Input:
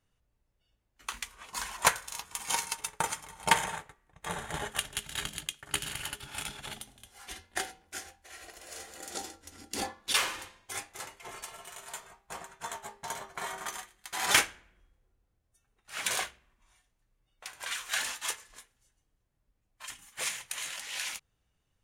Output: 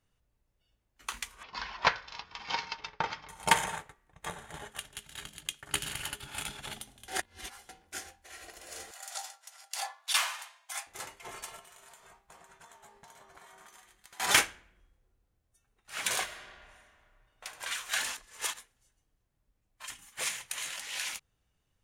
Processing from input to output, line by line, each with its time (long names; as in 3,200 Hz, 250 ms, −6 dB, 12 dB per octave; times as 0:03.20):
0:01.43–0:03.29: elliptic low-pass filter 5,100 Hz, stop band 50 dB
0:04.30–0:05.45: clip gain −8.5 dB
0:06.14–0:06.54: notch filter 5,500 Hz, Q 13
0:07.08–0:07.69: reverse
0:08.91–0:10.87: Chebyshev high-pass filter 640 Hz, order 5
0:11.59–0:14.20: downward compressor 12 to 1, threshold −51 dBFS
0:16.23–0:17.45: thrown reverb, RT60 2.2 s, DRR −2 dB
0:18.17–0:18.58: reverse